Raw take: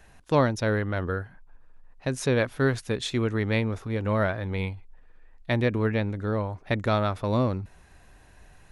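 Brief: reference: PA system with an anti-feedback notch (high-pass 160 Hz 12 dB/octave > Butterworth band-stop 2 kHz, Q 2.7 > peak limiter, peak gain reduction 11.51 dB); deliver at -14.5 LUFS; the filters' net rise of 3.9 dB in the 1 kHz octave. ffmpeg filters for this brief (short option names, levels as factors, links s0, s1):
-af "highpass=160,asuperstop=centerf=2000:order=8:qfactor=2.7,equalizer=f=1000:t=o:g=5,volume=7.5,alimiter=limit=0.944:level=0:latency=1"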